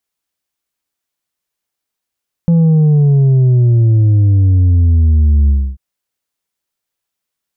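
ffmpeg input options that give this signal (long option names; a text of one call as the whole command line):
ffmpeg -f lavfi -i "aevalsrc='0.447*clip((3.29-t)/0.28,0,1)*tanh(1.58*sin(2*PI*170*3.29/log(65/170)*(exp(log(65/170)*t/3.29)-1)))/tanh(1.58)':duration=3.29:sample_rate=44100" out.wav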